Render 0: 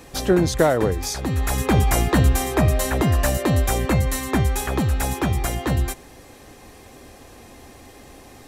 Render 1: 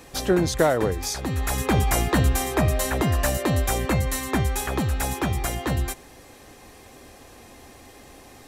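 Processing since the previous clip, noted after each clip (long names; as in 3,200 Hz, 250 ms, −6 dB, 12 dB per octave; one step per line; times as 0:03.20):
low-shelf EQ 480 Hz −3 dB
level −1 dB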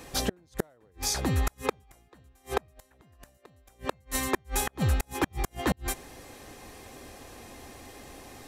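gate with flip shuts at −14 dBFS, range −38 dB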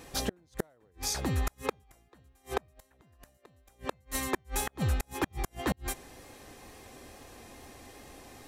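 tape wow and flutter 22 cents
level −3.5 dB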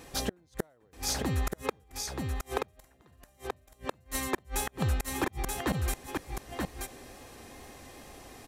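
single-tap delay 930 ms −4 dB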